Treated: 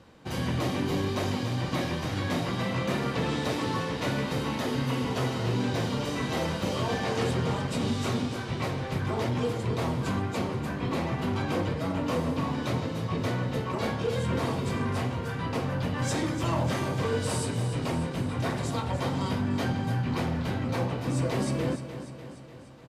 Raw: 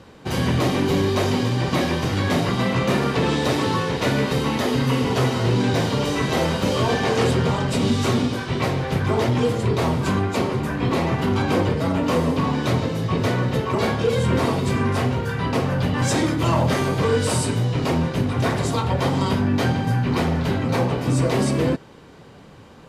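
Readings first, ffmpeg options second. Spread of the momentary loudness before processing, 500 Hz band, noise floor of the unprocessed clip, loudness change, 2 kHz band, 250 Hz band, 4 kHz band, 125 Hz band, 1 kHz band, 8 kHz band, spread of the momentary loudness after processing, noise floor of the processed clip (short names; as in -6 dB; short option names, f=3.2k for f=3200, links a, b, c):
3 LU, -9.0 dB, -45 dBFS, -8.5 dB, -8.0 dB, -8.0 dB, -8.0 dB, -8.0 dB, -8.0 dB, -8.0 dB, 3 LU, -40 dBFS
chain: -af "bandreject=f=410:w=12,aecho=1:1:297|594|891|1188|1485|1782|2079:0.266|0.157|0.0926|0.0546|0.0322|0.019|0.0112,volume=-8.5dB"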